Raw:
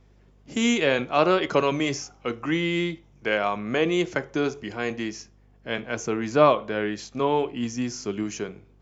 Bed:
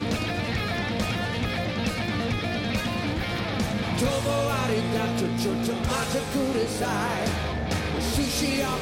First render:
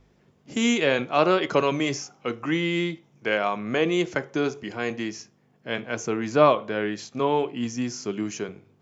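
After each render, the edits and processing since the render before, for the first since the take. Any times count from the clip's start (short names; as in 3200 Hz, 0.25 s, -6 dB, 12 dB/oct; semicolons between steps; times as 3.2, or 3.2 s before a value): de-hum 50 Hz, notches 2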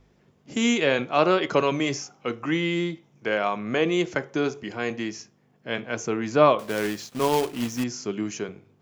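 2.73–3.37 dynamic EQ 2500 Hz, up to -5 dB, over -38 dBFS, Q 1.5; 6.59–7.84 companded quantiser 4-bit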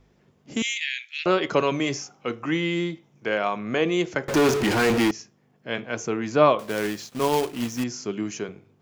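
0.62–1.26 steep high-pass 1800 Hz 72 dB/oct; 4.28–5.11 power-law curve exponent 0.35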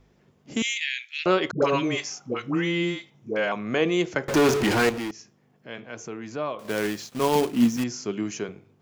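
1.51–3.52 dispersion highs, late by 0.112 s, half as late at 510 Hz; 4.89–6.65 compressor 1.5:1, threshold -48 dBFS; 7.35–7.77 bell 220 Hz +11 dB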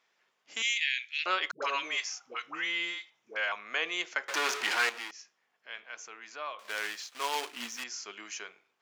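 HPF 1300 Hz 12 dB/oct; high shelf 8600 Hz -11.5 dB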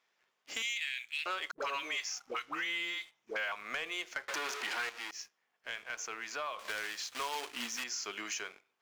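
compressor 4:1, threshold -43 dBFS, peak gain reduction 16.5 dB; sample leveller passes 2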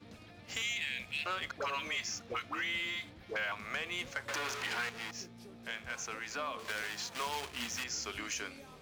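add bed -26.5 dB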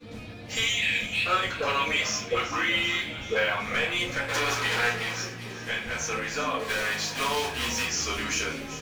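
frequency-shifting echo 0.386 s, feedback 59%, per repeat +67 Hz, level -13.5 dB; shoebox room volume 35 m³, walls mixed, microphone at 1.8 m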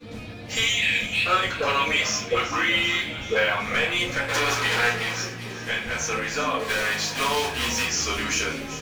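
gain +3.5 dB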